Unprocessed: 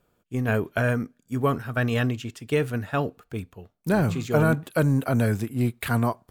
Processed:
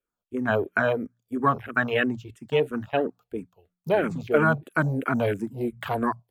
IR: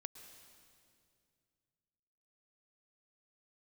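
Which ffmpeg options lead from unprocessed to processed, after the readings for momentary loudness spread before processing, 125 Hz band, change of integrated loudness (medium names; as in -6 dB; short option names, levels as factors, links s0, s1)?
11 LU, -7.5 dB, -0.5 dB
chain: -filter_complex "[0:a]equalizer=f=130:t=o:w=2.4:g=-8,bandreject=f=60:t=h:w=6,bandreject=f=120:t=h:w=6,bandreject=f=180:t=h:w=6,acrossover=split=110[s0][s1];[s0]acompressor=threshold=0.00178:ratio=6[s2];[s2][s1]amix=inputs=2:normalize=0,afwtdn=0.02,dynaudnorm=f=110:g=5:m=2.24,asplit=2[s3][s4];[s4]afreqshift=-3[s5];[s3][s5]amix=inputs=2:normalize=1"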